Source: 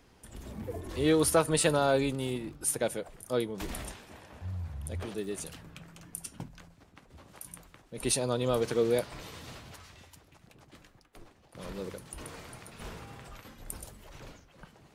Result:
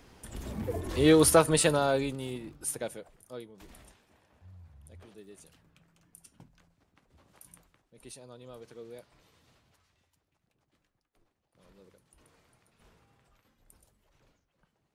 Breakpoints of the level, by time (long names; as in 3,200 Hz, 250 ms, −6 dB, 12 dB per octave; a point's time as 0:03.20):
0:01.31 +4.5 dB
0:02.21 −4 dB
0:02.71 −4 dB
0:03.52 −15 dB
0:06.00 −15 dB
0:07.54 −8 dB
0:08.12 −19.5 dB